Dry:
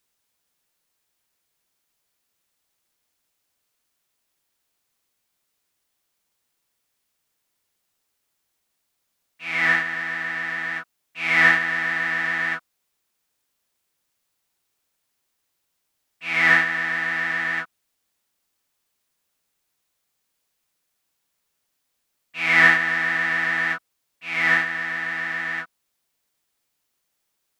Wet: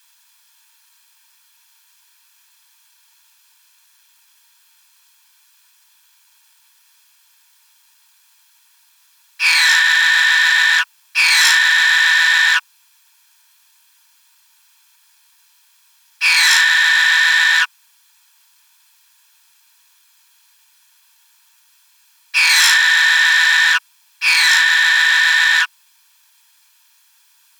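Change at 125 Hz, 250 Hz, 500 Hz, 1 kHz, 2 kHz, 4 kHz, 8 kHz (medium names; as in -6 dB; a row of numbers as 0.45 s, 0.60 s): under -40 dB, under -40 dB, under -20 dB, +5.0 dB, +8.5 dB, +21.0 dB, no reading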